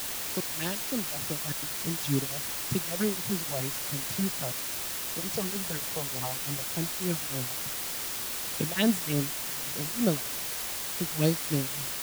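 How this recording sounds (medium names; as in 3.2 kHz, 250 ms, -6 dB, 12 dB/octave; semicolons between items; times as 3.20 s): phasing stages 4, 3.3 Hz, lowest notch 260–2500 Hz; tremolo triangle 3.4 Hz, depth 100%; a quantiser's noise floor 6-bit, dither triangular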